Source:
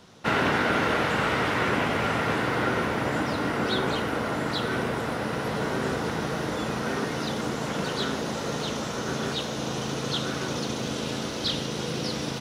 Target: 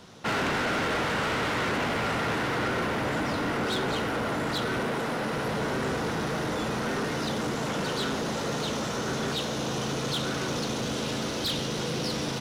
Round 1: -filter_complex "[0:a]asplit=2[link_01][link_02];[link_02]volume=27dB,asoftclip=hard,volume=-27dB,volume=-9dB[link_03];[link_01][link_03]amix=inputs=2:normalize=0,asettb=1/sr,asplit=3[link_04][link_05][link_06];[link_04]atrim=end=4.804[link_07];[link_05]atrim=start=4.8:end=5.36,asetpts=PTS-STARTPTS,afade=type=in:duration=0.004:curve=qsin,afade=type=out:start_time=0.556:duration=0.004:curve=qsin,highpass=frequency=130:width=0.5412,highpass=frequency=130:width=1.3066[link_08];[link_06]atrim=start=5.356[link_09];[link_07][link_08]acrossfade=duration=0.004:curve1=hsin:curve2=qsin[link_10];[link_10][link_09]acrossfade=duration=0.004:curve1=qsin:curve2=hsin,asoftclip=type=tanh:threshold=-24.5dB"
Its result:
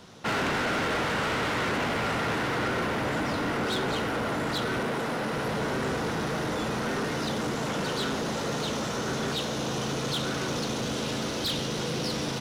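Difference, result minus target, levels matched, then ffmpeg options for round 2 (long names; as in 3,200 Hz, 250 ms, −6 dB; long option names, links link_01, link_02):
gain into a clipping stage and back: distortion +18 dB
-filter_complex "[0:a]asplit=2[link_01][link_02];[link_02]volume=17dB,asoftclip=hard,volume=-17dB,volume=-9dB[link_03];[link_01][link_03]amix=inputs=2:normalize=0,asettb=1/sr,asplit=3[link_04][link_05][link_06];[link_04]atrim=end=4.804[link_07];[link_05]atrim=start=4.8:end=5.36,asetpts=PTS-STARTPTS,afade=type=in:duration=0.004:curve=qsin,afade=type=out:start_time=0.556:duration=0.004:curve=qsin,highpass=frequency=130:width=0.5412,highpass=frequency=130:width=1.3066[link_08];[link_06]atrim=start=5.356[link_09];[link_07][link_08]acrossfade=duration=0.004:curve1=hsin:curve2=qsin[link_10];[link_10][link_09]acrossfade=duration=0.004:curve1=qsin:curve2=hsin,asoftclip=type=tanh:threshold=-24.5dB"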